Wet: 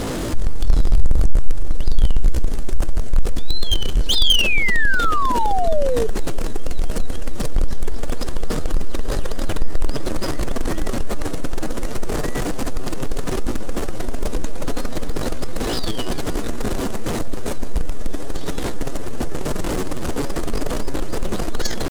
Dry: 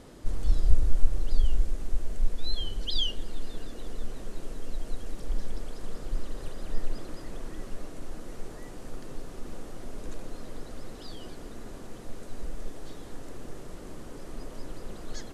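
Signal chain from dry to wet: tempo 0.7×; power-law waveshaper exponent 0.5; painted sound fall, 4.15–6.07 s, 430–3700 Hz -25 dBFS; trim +4 dB

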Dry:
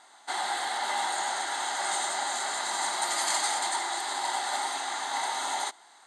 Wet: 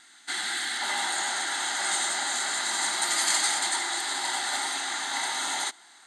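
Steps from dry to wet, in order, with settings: high-order bell 690 Hz -16 dB, from 0.80 s -8 dB; trim +4.5 dB

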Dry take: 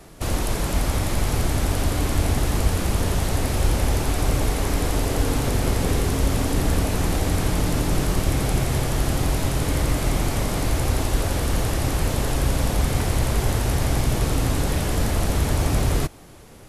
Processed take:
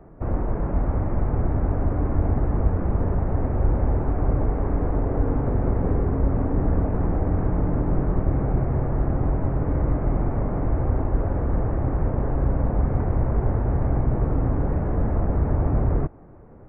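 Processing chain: Gaussian low-pass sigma 6.7 samples

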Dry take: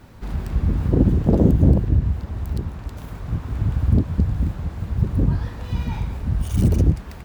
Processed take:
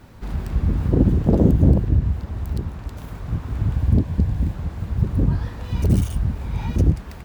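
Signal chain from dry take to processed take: 3.74–4.55 s: band-stop 1.3 kHz, Q 6; 5.82–6.76 s: reverse

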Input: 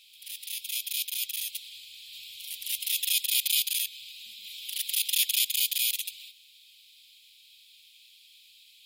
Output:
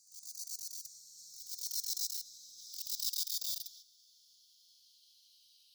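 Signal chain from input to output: gliding tape speed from 187% -> 121%; spectral replace 2.26–2.56 s, 290–2800 Hz after; trim -9 dB

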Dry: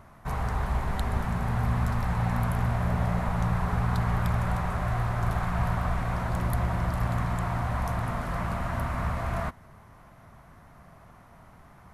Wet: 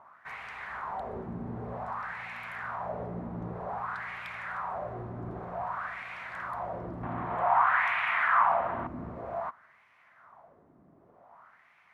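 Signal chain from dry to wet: wah-wah 0.53 Hz 300–2400 Hz, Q 3.3; in parallel at -1 dB: peak limiter -35 dBFS, peak gain reduction 7.5 dB; 7.03–8.87 s: on the sum: high-order bell 1.6 kHz +13 dB 2.6 oct

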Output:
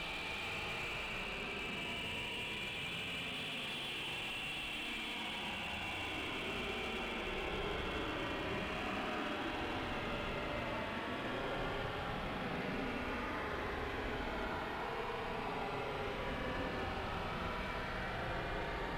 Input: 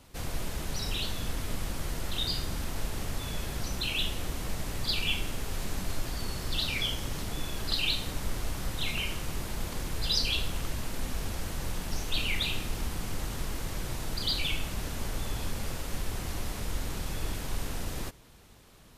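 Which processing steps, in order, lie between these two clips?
peaking EQ 12 kHz -4 dB 0.71 oct; on a send: reverse echo 34 ms -6.5 dB; on the sum: Paulstretch 30×, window 0.05 s, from 4.96 s; gain riding within 4 dB 2 s; high-pass 570 Hz 6 dB/octave; distance through air 500 m; slew-rate limiter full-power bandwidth 19 Hz; trim +2.5 dB

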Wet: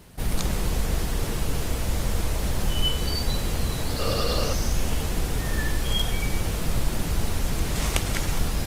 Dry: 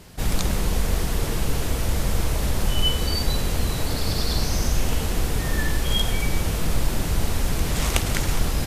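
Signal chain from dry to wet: 3.99–4.53 s: small resonant body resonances 530/1200/2800 Hz, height 14 dB, ringing for 25 ms; trim -2.5 dB; Opus 32 kbps 48 kHz

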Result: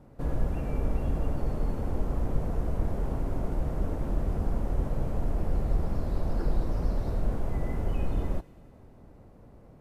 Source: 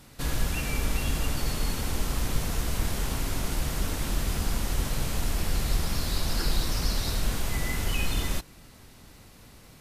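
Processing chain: FFT filter 240 Hz 0 dB, 590 Hz +3 dB, 3.8 kHz -25 dB; on a send: feedback echo behind a high-pass 97 ms, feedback 73%, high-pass 2.2 kHz, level -17 dB

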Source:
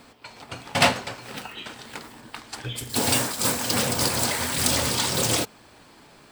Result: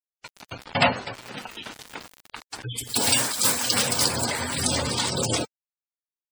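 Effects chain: 2.78–4.08 s: tilt shelf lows -4 dB; word length cut 6-bit, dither none; spectral gate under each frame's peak -15 dB strong

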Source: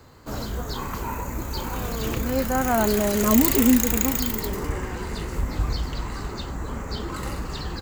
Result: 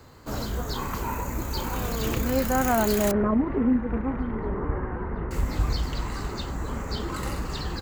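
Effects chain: peak limiter -12.5 dBFS, peak gain reduction 10 dB; 3.11–5.31 s: low-pass 1.6 kHz 24 dB/octave

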